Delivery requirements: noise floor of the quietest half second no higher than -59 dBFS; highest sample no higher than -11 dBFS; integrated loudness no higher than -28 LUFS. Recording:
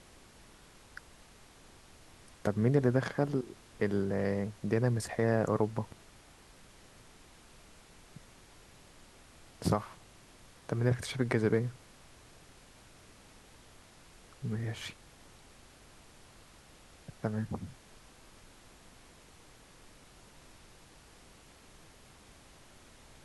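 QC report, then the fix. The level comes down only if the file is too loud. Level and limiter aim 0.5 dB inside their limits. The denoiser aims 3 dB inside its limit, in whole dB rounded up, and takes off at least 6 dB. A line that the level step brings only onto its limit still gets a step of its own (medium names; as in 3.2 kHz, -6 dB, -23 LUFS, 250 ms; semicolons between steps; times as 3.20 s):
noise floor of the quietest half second -57 dBFS: fail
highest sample -13.5 dBFS: pass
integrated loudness -32.5 LUFS: pass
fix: noise reduction 6 dB, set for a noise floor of -57 dBFS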